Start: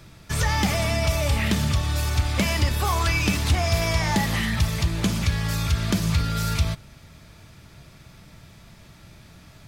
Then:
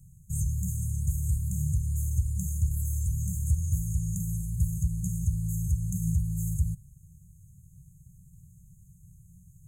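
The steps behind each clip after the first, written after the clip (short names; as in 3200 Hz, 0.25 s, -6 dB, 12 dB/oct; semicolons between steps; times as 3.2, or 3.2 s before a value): FFT band-reject 190–6300 Hz; gain -4 dB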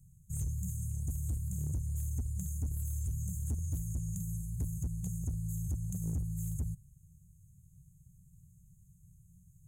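hard clip -23 dBFS, distortion -14 dB; gain -6.5 dB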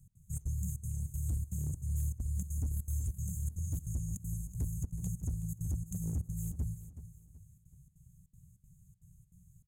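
step gate "x.xxx.xxx" 198 bpm -24 dB; feedback echo 0.375 s, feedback 33%, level -13 dB; reverb RT60 1.5 s, pre-delay 7 ms, DRR 19 dB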